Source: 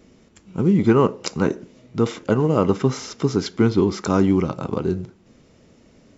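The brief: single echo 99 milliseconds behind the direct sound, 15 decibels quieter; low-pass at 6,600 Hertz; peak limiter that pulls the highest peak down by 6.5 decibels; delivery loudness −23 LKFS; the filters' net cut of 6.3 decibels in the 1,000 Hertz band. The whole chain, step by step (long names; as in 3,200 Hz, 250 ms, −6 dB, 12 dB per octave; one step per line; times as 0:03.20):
low-pass filter 6,600 Hz
parametric band 1,000 Hz −8 dB
brickwall limiter −11 dBFS
single-tap delay 99 ms −15 dB
level +0.5 dB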